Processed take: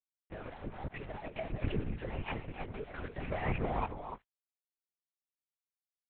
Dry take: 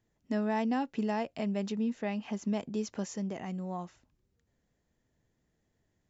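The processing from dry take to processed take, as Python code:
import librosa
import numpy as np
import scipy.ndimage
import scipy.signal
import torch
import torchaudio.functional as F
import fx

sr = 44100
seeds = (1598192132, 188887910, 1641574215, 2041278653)

y = fx.rattle_buzz(x, sr, strikes_db=-35.0, level_db=-36.0)
y = fx.highpass(y, sr, hz=900.0, slope=6)
y = fx.env_lowpass_down(y, sr, base_hz=1600.0, full_db=-34.0)
y = scipy.signal.sosfilt(scipy.signal.butter(4, 2300.0, 'lowpass', fs=sr, output='sos'), y)
y = fx.over_compress(y, sr, threshold_db=-47.0, ratio=-1.0)
y = fx.chorus_voices(y, sr, voices=6, hz=1.1, base_ms=15, depth_ms=3.9, mix_pct=65)
y = np.sign(y) * np.maximum(np.abs(y) - 10.0 ** (-59.5 / 20.0), 0.0)
y = fx.echo_multitap(y, sr, ms=(112, 293), db=(-18.0, -9.5))
y = fx.lpc_vocoder(y, sr, seeds[0], excitation='whisper', order=8)
y = y * librosa.db_to_amplitude(13.0)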